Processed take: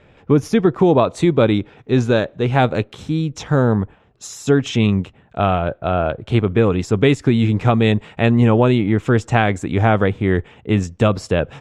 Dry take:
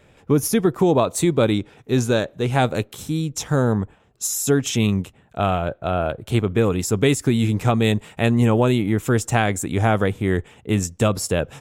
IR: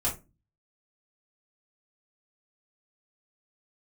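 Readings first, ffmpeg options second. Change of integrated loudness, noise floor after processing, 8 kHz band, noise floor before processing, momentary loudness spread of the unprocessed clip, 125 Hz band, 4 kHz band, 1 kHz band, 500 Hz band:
+3.5 dB, -51 dBFS, -10.0 dB, -55 dBFS, 7 LU, +3.5 dB, +0.5 dB, +3.5 dB, +3.5 dB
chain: -af "lowpass=3.6k,volume=3.5dB"

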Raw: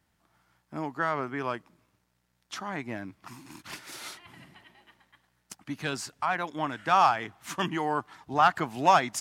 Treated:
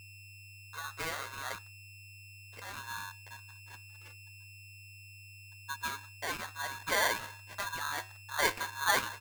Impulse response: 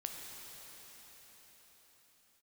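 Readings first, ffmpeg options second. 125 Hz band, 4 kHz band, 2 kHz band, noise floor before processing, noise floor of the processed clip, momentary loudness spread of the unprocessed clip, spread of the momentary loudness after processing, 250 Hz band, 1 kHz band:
-8.0 dB, 0.0 dB, -0.5 dB, -74 dBFS, -52 dBFS, 20 LU, 21 LU, -16.5 dB, -11.5 dB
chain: -filter_complex "[0:a]asplit=2[a][b];[b]adelay=181,lowpass=f=2.6k:p=1,volume=-19dB,asplit=2[c][d];[d]adelay=181,lowpass=f=2.6k:p=1,volume=0.39,asplit=2[e][f];[f]adelay=181,lowpass=f=2.6k:p=1,volume=0.39[g];[c][e][g]amix=inputs=3:normalize=0[h];[a][h]amix=inputs=2:normalize=0,asubboost=boost=7.5:cutoff=100,aresample=11025,acrusher=bits=3:mode=log:mix=0:aa=0.000001,aresample=44100,flanger=delay=2.6:depth=8.6:regen=-22:speed=0.48:shape=triangular,lowshelf=f=190:g=3.5,afreqshift=-480,acrusher=bits=6:mix=0:aa=0.5,afftdn=nr=21:nf=-47,adynamicsmooth=sensitivity=2.5:basefreq=840,flanger=delay=9.1:depth=1.4:regen=-78:speed=1.9:shape=triangular,aeval=exprs='val(0)+0.00355*sin(2*PI*1400*n/s)':c=same,aeval=exprs='val(0)*sgn(sin(2*PI*1300*n/s))':c=same"

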